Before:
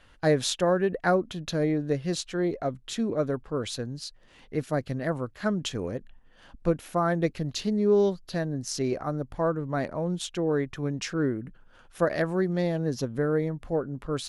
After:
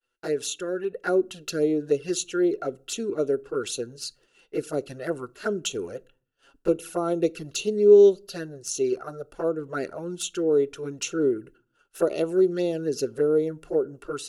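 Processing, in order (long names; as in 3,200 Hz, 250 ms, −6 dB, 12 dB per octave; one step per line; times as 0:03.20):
bass and treble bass −7 dB, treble +14 dB
downward expander −46 dBFS
automatic gain control gain up to 5 dB
flanger swept by the level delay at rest 8.2 ms, full sweep at −19 dBFS
hollow resonant body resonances 400/1,400/2,700 Hz, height 15 dB, ringing for 25 ms
on a send: convolution reverb RT60 0.45 s, pre-delay 6 ms, DRR 20.5 dB
on the sum: level −8.5 dB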